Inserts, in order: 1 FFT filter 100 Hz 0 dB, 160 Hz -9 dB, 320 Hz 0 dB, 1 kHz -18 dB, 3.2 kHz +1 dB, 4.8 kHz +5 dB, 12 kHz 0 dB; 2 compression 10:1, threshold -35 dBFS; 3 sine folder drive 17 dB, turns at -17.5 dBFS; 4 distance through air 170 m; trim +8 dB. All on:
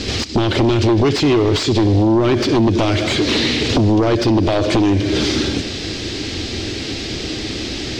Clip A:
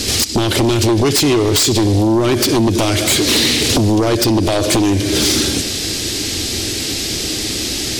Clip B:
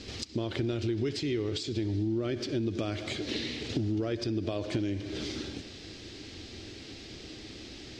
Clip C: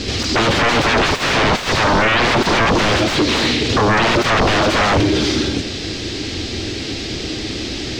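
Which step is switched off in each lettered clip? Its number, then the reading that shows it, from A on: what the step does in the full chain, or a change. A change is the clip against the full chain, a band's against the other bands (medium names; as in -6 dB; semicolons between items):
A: 4, 8 kHz band +13.0 dB; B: 3, distortion -6 dB; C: 2, mean gain reduction 7.0 dB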